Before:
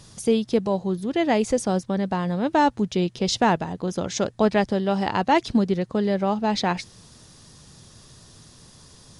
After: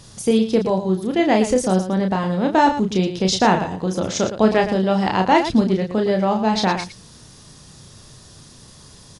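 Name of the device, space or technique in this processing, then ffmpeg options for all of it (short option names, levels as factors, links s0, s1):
slapback doubling: -filter_complex "[0:a]asplit=3[s0][s1][s2];[s1]adelay=32,volume=0.562[s3];[s2]adelay=113,volume=0.299[s4];[s0][s3][s4]amix=inputs=3:normalize=0,volume=1.41"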